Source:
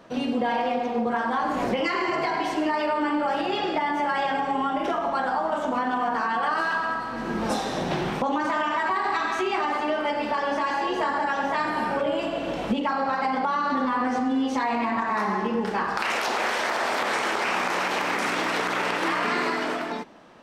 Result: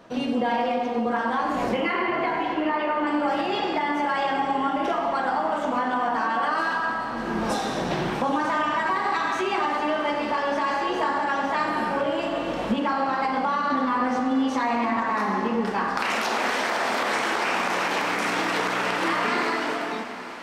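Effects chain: 1.77–3.07 LPF 3300 Hz 24 dB/oct; diffused feedback echo 0.797 s, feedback 71%, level -15 dB; non-linear reverb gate 0.43 s falling, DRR 9 dB

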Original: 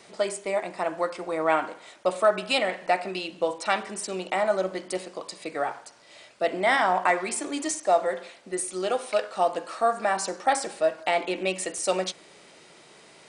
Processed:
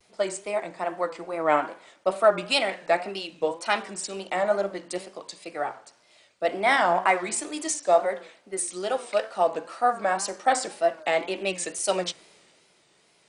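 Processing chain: wow and flutter 100 cents; three-band expander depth 40%

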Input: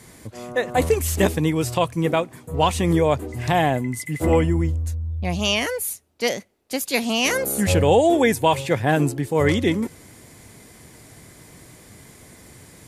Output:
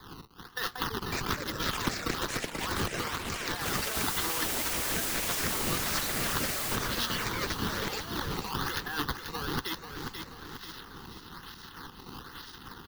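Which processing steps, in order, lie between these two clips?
zero-crossing step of -23.5 dBFS; HPF 830 Hz 12 dB/oct; gate -26 dBFS, range -39 dB; high shelf 9900 Hz +7.5 dB; limiter -13 dBFS, peak gain reduction 7.5 dB; negative-ratio compressor -32 dBFS, ratio -1; decimation with a swept rate 15×, swing 160% 1.1 Hz; fixed phaser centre 2300 Hz, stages 6; 3.95–6.76 requantised 6-bit, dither triangular; echoes that change speed 0.695 s, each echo +5 st, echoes 3; feedback echo 0.487 s, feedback 38%, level -9 dB; three-band squash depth 40%; gain +1 dB

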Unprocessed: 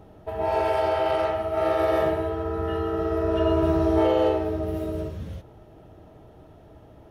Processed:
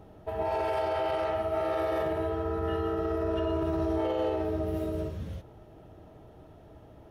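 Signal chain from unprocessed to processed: limiter -19 dBFS, peak gain reduction 8.5 dB; gain -2.5 dB

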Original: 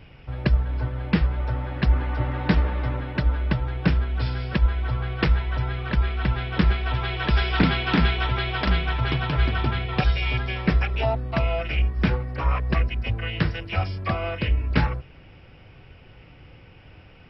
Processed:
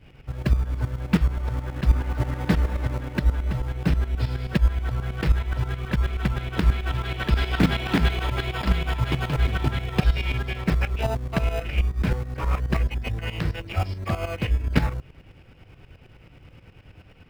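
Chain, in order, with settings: in parallel at -7.5 dB: decimation with a swept rate 31×, swing 60% 0.2 Hz; on the sum: tremolo saw up 9.4 Hz, depth 75%

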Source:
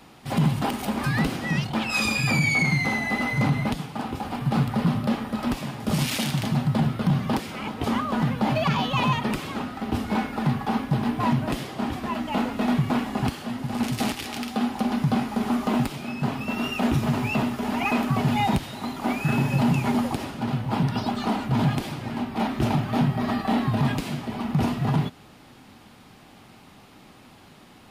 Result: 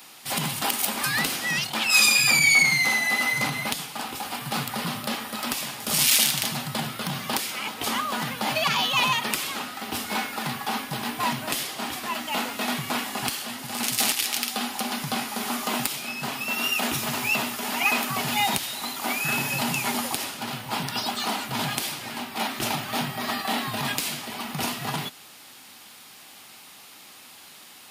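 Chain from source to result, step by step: tilt +4.5 dB/oct

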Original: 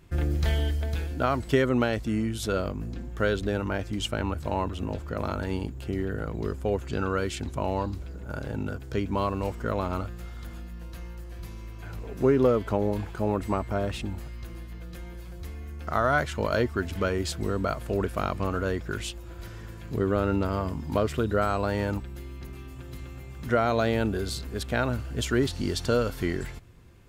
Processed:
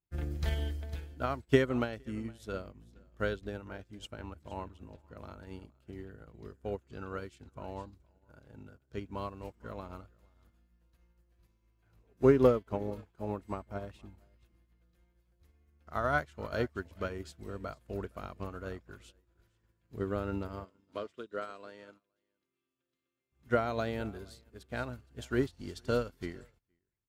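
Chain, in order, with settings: 20.65–23.32 speaker cabinet 310–9900 Hz, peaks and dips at 810 Hz -10 dB, 3300 Hz +4 dB, 9000 Hz -4 dB; echo 0.465 s -16 dB; upward expander 2.5:1, over -44 dBFS

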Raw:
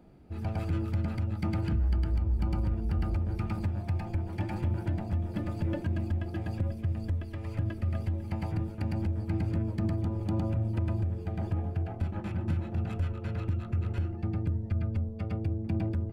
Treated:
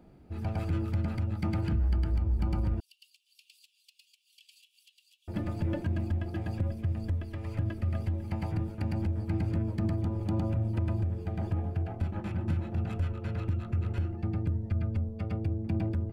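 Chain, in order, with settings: 2.8–5.28 Chebyshev high-pass 2800 Hz, order 6

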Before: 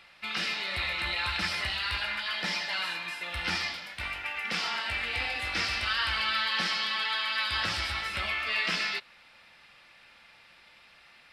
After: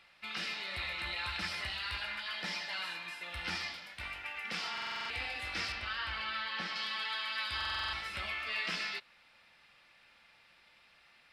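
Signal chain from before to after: 5.72–6.76 bell 11000 Hz -12 dB 1.9 oct; stuck buffer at 4.73/7.56, samples 2048, times 7; gain -7 dB

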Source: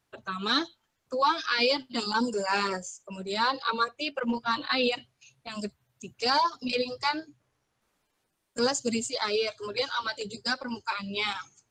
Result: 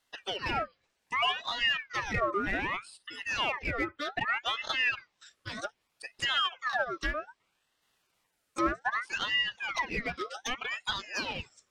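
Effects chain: Chebyshev high-pass 240 Hz, order 5; treble ducked by the level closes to 1000 Hz, closed at -25 dBFS; dynamic EQ 7800 Hz, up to -5 dB, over -55 dBFS, Q 0.71; in parallel at -5.5 dB: overloaded stage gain 34.5 dB; on the sum: ring modulator with a swept carrier 1600 Hz, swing 50%, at 0.64 Hz; gain +1 dB

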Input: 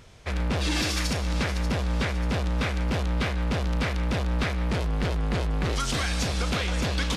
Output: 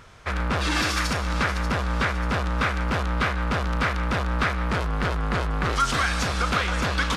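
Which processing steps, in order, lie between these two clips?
bell 1300 Hz +11 dB 1.1 oct

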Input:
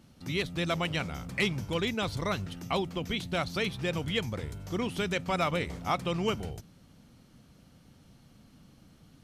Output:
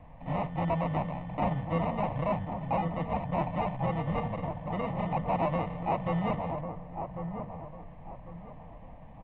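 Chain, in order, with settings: notches 60/120/180/240/300/360/420/480 Hz; comb 6.3 ms, depth 50%; sample-and-hold 27×; added noise brown -47 dBFS; fixed phaser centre 1400 Hz, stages 6; overdrive pedal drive 18 dB, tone 1100 Hz, clips at -17 dBFS; tape spacing loss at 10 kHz 39 dB; dark delay 1.097 s, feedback 31%, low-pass 1300 Hz, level -7 dB; gain +3 dB

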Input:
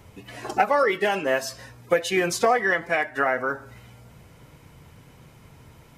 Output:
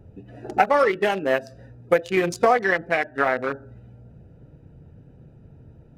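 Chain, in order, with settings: Wiener smoothing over 41 samples; gain +3 dB

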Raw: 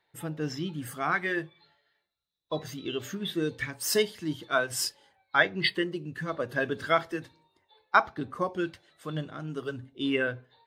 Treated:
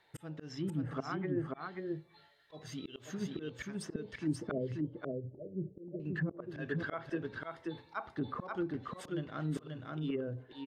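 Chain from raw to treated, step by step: 4.51–6 rippled Chebyshev low-pass 600 Hz, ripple 3 dB; auto swell 0.662 s; treble ducked by the level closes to 370 Hz, closed at -35 dBFS; on a send: echo 0.534 s -3 dB; on the sum: gain +5.5 dB

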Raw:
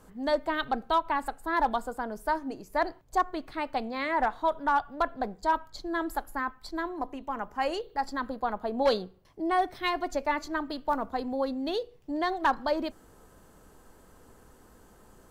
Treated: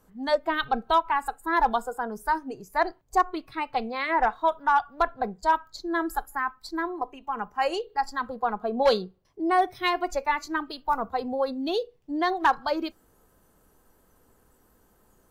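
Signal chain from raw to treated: spectral noise reduction 11 dB; gain +4 dB

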